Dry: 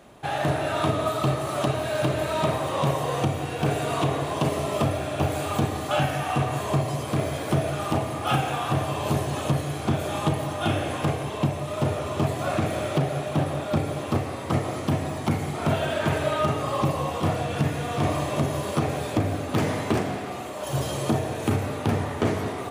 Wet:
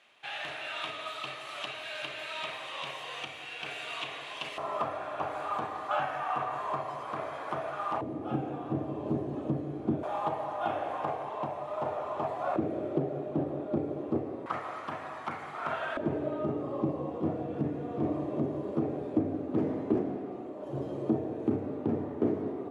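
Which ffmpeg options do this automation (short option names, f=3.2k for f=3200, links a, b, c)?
-af "asetnsamples=n=441:p=0,asendcmd='4.58 bandpass f 1100;8.01 bandpass f 300;10.03 bandpass f 850;12.56 bandpass f 350;14.46 bandpass f 1300;15.97 bandpass f 320',bandpass=f=2.7k:t=q:w=1.9:csg=0"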